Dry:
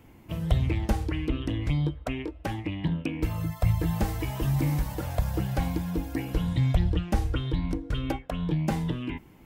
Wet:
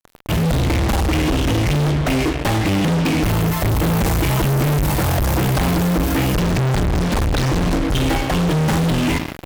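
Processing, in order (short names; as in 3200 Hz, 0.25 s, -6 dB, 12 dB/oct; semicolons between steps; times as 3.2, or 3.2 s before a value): Schroeder reverb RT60 1.3 s, combs from 30 ms, DRR 11.5 dB; fuzz box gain 46 dB, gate -45 dBFS; 6.4–7.63 Doppler distortion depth 0.97 ms; gain -2.5 dB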